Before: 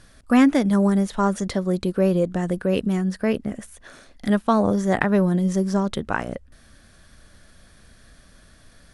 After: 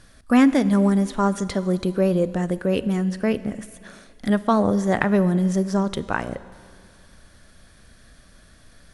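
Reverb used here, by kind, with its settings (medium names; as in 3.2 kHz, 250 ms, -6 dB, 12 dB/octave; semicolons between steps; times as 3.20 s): Schroeder reverb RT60 2.2 s, combs from 33 ms, DRR 15.5 dB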